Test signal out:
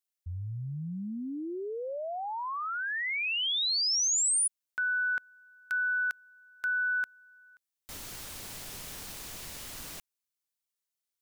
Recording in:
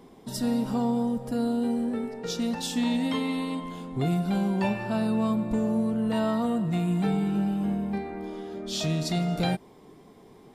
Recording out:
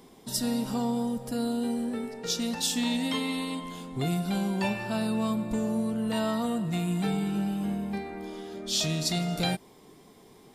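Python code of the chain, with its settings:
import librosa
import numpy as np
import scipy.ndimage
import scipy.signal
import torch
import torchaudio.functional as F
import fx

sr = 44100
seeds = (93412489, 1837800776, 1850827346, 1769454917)

y = fx.high_shelf(x, sr, hz=2600.0, db=10.5)
y = F.gain(torch.from_numpy(y), -3.0).numpy()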